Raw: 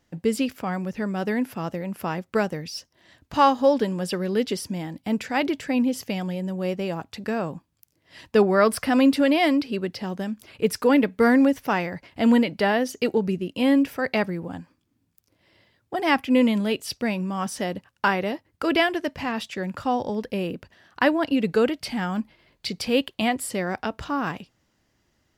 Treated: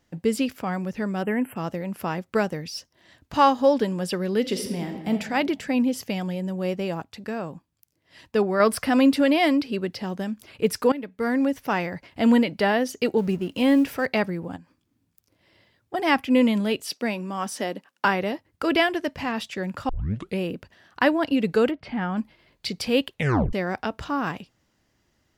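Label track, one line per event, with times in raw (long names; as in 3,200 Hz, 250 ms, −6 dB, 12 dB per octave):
1.230000	1.560000	time-frequency box erased 3,200–7,400 Hz
4.400000	5.100000	thrown reverb, RT60 1.4 s, DRR 4 dB
7.020000	8.600000	clip gain −4 dB
10.920000	11.860000	fade in, from −18.5 dB
13.180000	14.060000	mu-law and A-law mismatch coded by mu
14.560000	15.940000	downward compressor 2 to 1, threshold −50 dBFS
16.850000	18.050000	high-pass filter 210 Hz 24 dB per octave
19.890000	19.890000	tape start 0.49 s
21.700000	22.160000	low-pass filter 1,500 Hz → 3,100 Hz
23.120000	23.120000	tape stop 0.41 s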